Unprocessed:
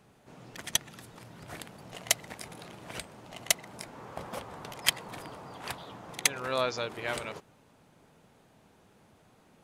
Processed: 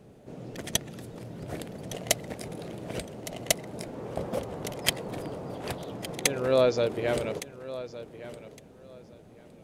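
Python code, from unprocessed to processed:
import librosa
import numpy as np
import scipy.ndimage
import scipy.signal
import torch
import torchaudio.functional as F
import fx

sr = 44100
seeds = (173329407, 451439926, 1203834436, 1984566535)

y = fx.low_shelf_res(x, sr, hz=730.0, db=9.0, q=1.5)
y = fx.echo_feedback(y, sr, ms=1162, feedback_pct=20, wet_db=-15)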